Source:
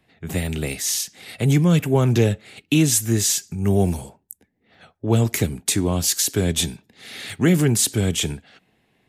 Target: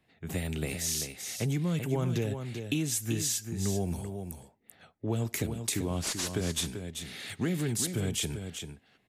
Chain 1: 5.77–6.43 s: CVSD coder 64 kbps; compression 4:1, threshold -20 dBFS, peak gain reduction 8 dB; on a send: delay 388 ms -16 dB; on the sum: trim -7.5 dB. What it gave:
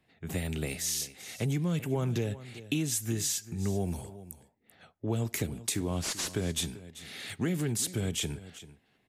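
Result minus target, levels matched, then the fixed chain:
echo-to-direct -8.5 dB
5.77–6.43 s: CVSD coder 64 kbps; compression 4:1, threshold -20 dBFS, peak gain reduction 8 dB; on a send: delay 388 ms -7.5 dB; on the sum: trim -7.5 dB

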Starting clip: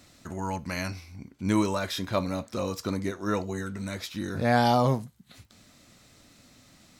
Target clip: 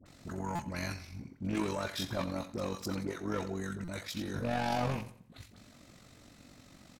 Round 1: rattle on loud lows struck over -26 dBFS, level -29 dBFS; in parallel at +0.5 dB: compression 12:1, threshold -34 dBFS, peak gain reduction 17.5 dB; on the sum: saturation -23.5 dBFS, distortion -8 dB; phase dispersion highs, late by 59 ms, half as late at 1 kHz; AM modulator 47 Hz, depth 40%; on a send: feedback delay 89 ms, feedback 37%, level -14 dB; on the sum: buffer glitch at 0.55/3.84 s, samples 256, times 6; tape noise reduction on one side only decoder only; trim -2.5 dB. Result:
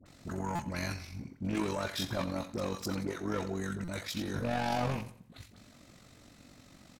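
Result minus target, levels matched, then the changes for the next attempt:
compression: peak gain reduction -9 dB
change: compression 12:1, threshold -44 dBFS, peak gain reduction 26.5 dB

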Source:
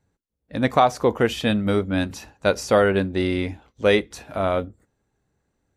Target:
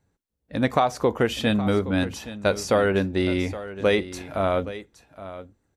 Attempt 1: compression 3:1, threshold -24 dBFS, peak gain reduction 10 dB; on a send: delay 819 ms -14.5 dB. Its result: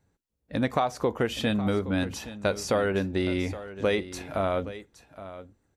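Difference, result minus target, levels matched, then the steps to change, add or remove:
compression: peak gain reduction +5 dB
change: compression 3:1, threshold -16.5 dBFS, peak gain reduction 5 dB

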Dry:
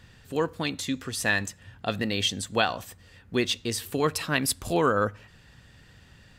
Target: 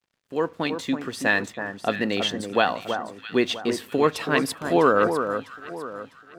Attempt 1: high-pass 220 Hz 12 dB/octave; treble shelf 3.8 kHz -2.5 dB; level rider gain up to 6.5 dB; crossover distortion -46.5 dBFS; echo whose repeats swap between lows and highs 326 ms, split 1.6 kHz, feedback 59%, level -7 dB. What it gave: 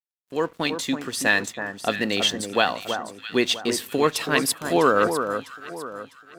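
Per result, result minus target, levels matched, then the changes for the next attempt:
8 kHz band +8.0 dB; crossover distortion: distortion +6 dB
change: treble shelf 3.8 kHz -14.5 dB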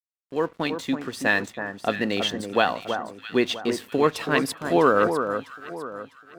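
crossover distortion: distortion +6 dB
change: crossover distortion -54 dBFS

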